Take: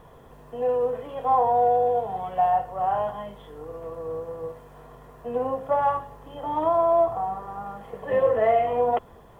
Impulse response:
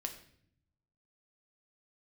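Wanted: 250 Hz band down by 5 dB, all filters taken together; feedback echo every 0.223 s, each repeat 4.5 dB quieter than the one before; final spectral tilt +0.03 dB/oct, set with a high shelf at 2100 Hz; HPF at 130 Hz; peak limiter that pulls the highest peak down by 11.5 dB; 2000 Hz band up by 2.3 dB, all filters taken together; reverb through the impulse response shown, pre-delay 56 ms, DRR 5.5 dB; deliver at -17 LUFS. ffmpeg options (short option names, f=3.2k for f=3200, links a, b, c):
-filter_complex "[0:a]highpass=130,equalizer=f=250:t=o:g=-6,equalizer=f=2k:t=o:g=4.5,highshelf=f=2.1k:g=-3.5,alimiter=limit=-23dB:level=0:latency=1,aecho=1:1:223|446|669|892|1115|1338|1561|1784|2007:0.596|0.357|0.214|0.129|0.0772|0.0463|0.0278|0.0167|0.01,asplit=2[a][b];[1:a]atrim=start_sample=2205,adelay=56[c];[b][c]afir=irnorm=-1:irlink=0,volume=-4.5dB[d];[a][d]amix=inputs=2:normalize=0,volume=12dB"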